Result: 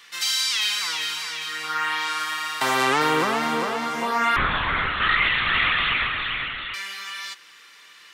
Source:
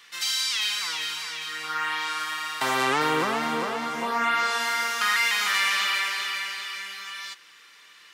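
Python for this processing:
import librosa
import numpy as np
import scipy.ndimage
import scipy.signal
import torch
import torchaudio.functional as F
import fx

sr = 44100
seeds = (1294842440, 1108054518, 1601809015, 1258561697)

y = fx.lpc_vocoder(x, sr, seeds[0], excitation='whisper', order=8, at=(4.36, 6.74))
y = y * librosa.db_to_amplitude(3.0)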